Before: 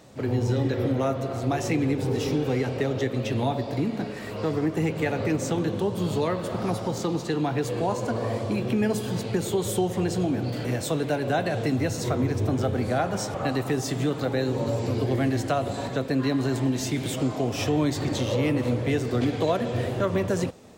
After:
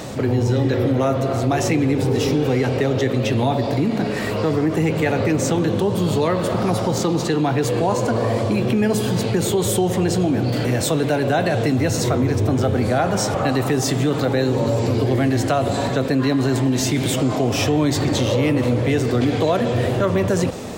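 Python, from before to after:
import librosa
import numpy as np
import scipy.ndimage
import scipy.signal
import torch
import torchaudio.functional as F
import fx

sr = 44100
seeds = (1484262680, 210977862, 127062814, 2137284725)

y = fx.env_flatten(x, sr, amount_pct=50)
y = y * 10.0 ** (4.5 / 20.0)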